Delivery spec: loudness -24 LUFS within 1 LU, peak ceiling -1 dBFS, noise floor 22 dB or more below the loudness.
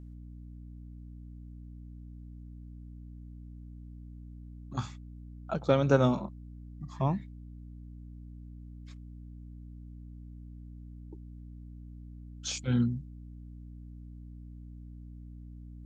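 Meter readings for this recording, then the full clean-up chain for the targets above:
hum 60 Hz; highest harmonic 300 Hz; hum level -44 dBFS; loudness -30.5 LUFS; peak level -9.0 dBFS; loudness target -24.0 LUFS
-> hum notches 60/120/180/240/300 Hz; trim +6.5 dB

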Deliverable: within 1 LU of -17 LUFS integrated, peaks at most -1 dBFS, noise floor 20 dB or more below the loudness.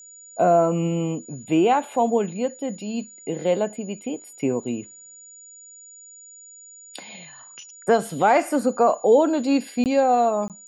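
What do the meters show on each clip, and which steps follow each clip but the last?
dropouts 2; longest dropout 18 ms; steady tone 6.9 kHz; tone level -43 dBFS; loudness -22.0 LUFS; peak level -7.0 dBFS; loudness target -17.0 LUFS
-> interpolate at 9.84/10.48 s, 18 ms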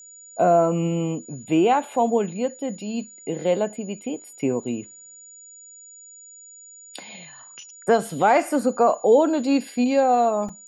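dropouts 0; steady tone 6.9 kHz; tone level -43 dBFS
-> band-stop 6.9 kHz, Q 30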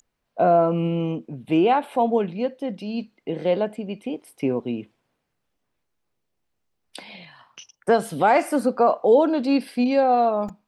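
steady tone not found; loudness -22.0 LUFS; peak level -7.0 dBFS; loudness target -17.0 LUFS
-> trim +5 dB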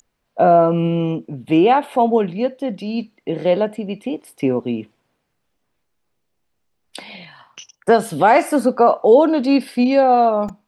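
loudness -17.0 LUFS; peak level -2.0 dBFS; noise floor -72 dBFS

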